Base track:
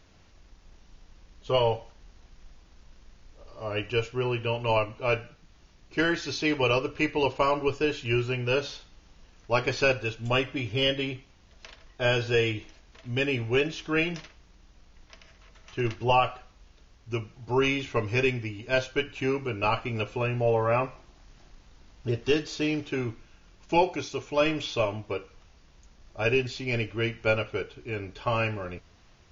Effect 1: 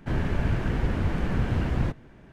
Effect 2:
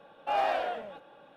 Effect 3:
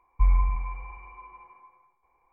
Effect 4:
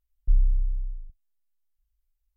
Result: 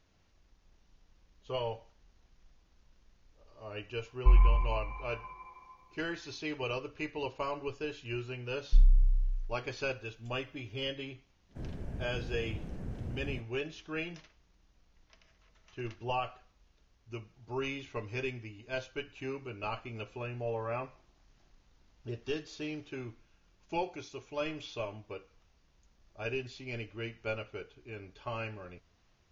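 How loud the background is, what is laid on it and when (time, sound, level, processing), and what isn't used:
base track -11.5 dB
4.06 add 3 -1 dB
8.45 add 4 -2 dB + comb 7.3 ms, depth 40%
11.49 add 1 -14.5 dB + band shelf 2000 Hz -9 dB 2.6 oct
not used: 2

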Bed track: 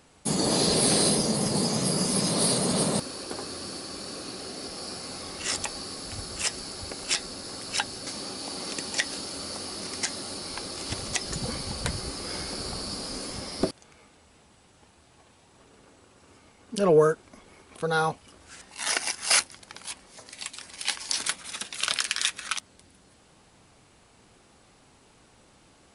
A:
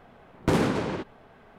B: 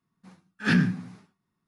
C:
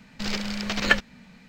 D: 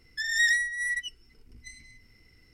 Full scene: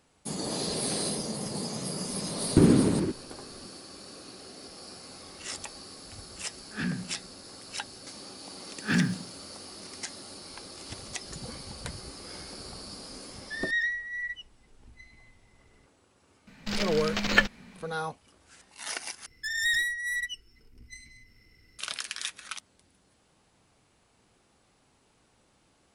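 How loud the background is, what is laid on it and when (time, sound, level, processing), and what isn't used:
bed track -8.5 dB
2.09 add A -7 dB + resonant low shelf 460 Hz +10.5 dB, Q 1.5
6.11 add B -10.5 dB
8.22 add B -3.5 dB + G.711 law mismatch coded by A
13.33 add D -2 dB + air absorption 280 m
16.47 add C -1.5 dB
19.26 replace with D -0.5 dB + one-sided clip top -29.5 dBFS, bottom -19 dBFS

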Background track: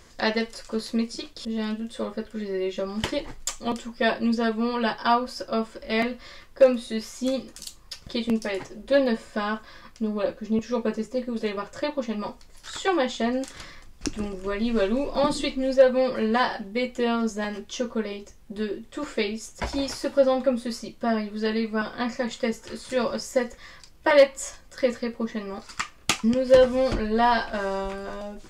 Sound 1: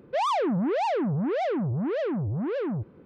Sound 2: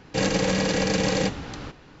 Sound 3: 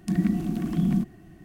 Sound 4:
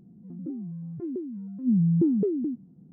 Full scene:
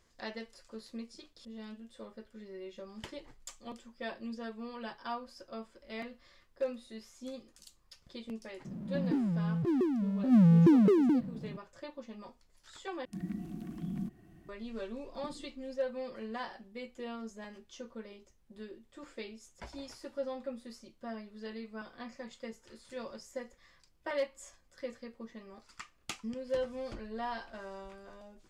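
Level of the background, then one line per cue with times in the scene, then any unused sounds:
background track -17.5 dB
8.65 add 4 -1 dB + power-law curve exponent 0.7
13.05 replace with 3 -15 dB + vocal rider
not used: 1, 2

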